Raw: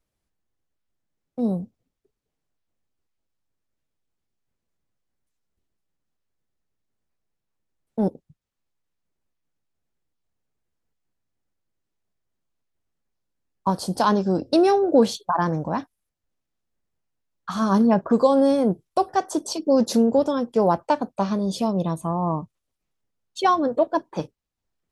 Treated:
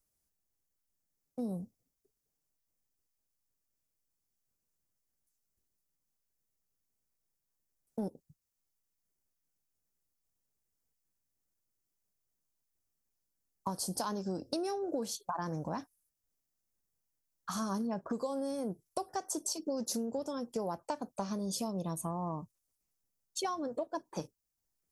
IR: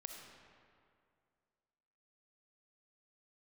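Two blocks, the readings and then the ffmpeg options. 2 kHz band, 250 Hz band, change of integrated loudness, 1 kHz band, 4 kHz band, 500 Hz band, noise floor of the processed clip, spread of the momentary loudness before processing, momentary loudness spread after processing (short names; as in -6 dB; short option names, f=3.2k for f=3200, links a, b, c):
-16.0 dB, -16.0 dB, -15.5 dB, -16.0 dB, -9.5 dB, -17.0 dB, -85 dBFS, 12 LU, 8 LU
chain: -af "aexciter=amount=4.2:drive=4.8:freq=5k,acompressor=threshold=-25dB:ratio=6,volume=-8dB"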